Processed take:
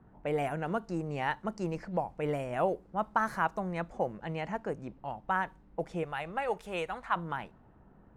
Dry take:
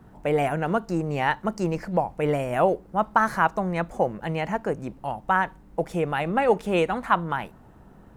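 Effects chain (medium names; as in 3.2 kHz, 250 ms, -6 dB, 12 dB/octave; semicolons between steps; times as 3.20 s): level-controlled noise filter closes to 2 kHz, open at -20 dBFS; 6.03–7.16 s: peaking EQ 250 Hz -11 dB 1.6 oct; trim -8.5 dB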